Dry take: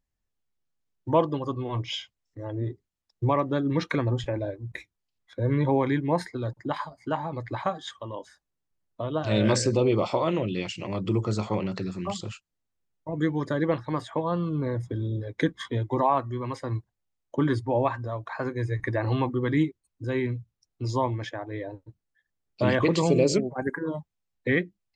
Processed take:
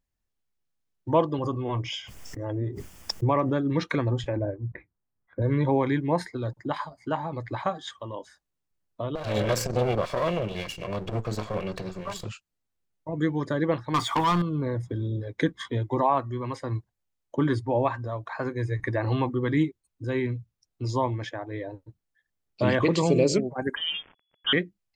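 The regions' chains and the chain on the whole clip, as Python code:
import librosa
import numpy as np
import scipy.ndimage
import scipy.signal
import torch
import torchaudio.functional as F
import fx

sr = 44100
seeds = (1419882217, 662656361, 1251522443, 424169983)

y = fx.chain(x, sr, fx.peak_eq(hz=4000.0, db=-13.5, octaves=0.22),
    fx.pre_swell(db_per_s=29.0), at=(1.38, 3.61))
y = fx.chain(y, sr, fx.lowpass(hz=1700.0, slope=24),
    fx.peak_eq(hz=130.0, db=4.5, octaves=2.8), at=(4.36, 5.42))
y = fx.chain(y, sr, fx.lower_of_two(delay_ms=1.8),
    fx.transformer_sat(knee_hz=280.0), at=(9.15, 12.25))
y = fx.chain(y, sr, fx.low_shelf(hz=350.0, db=-9.5),
    fx.comb(ms=0.9, depth=0.82),
    fx.leveller(passes=3), at=(13.94, 14.42))
y = fx.chain(y, sr, fx.crossing_spikes(level_db=-23.5),
    fx.high_shelf(hz=2500.0, db=-7.5),
    fx.freq_invert(carrier_hz=3400), at=(23.76, 24.53))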